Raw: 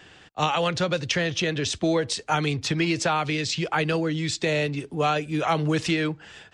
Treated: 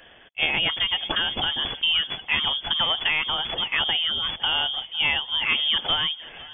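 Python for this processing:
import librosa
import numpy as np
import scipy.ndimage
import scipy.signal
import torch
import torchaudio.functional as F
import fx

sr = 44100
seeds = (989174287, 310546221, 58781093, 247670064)

y = fx.tracing_dist(x, sr, depth_ms=0.13)
y = fx.freq_invert(y, sr, carrier_hz=3400)
y = fx.echo_swing(y, sr, ms=847, ratio=1.5, feedback_pct=33, wet_db=-20)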